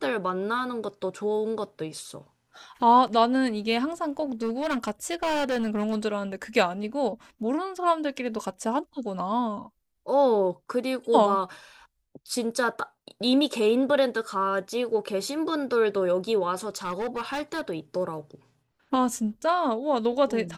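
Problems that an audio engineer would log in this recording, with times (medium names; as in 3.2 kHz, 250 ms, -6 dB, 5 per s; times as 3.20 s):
4.42–5.99 s: clipped -23 dBFS
16.76–17.61 s: clipped -26 dBFS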